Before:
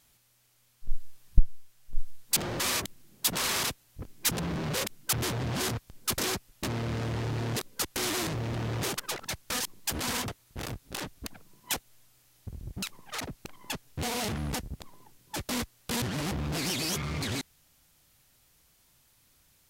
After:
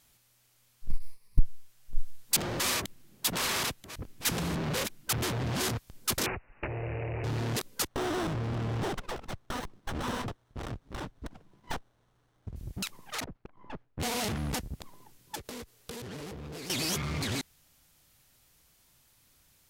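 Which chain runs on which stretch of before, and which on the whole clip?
0:00.90–0:01.39: mu-law and A-law mismatch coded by A + EQ curve with evenly spaced ripples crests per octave 0.89, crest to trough 12 dB + downward compressor 2 to 1, threshold −21 dBFS
0:02.74–0:05.46: delay that plays each chunk backwards 609 ms, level −12 dB + bass and treble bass 0 dB, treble −3 dB
0:06.26–0:07.24: phaser with its sweep stopped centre 540 Hz, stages 4 + bad sample-rate conversion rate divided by 8×, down none, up filtered + multiband upward and downward compressor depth 70%
0:07.87–0:12.56: low-pass filter 5,400 Hz + windowed peak hold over 17 samples
0:13.24–0:14.00: gain on one half-wave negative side −12 dB + low-pass filter 1,400 Hz
0:15.35–0:16.70: parametric band 440 Hz +11.5 dB 0.38 octaves + downward compressor 10 to 1, threshold −38 dBFS
whole clip: no processing

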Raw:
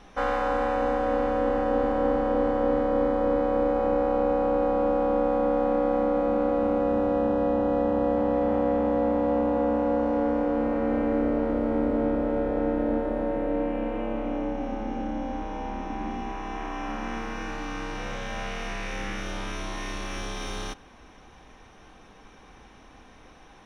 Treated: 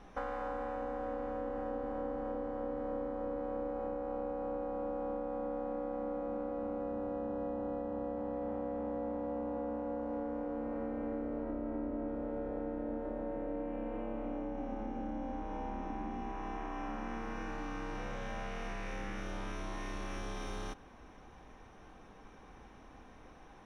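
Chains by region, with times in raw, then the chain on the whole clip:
0:11.43–0:12.08: high-frequency loss of the air 120 metres + comb filter 3.1 ms, depth 41%
whole clip: high-shelf EQ 5,400 Hz −5 dB; downward compressor, threshold −32 dBFS; parametric band 3,500 Hz −5.5 dB 1.8 octaves; level −3.5 dB

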